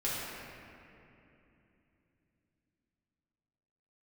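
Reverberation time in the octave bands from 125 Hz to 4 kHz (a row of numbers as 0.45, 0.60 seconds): 4.6, 4.4, 3.1, 2.7, 2.8, 1.9 seconds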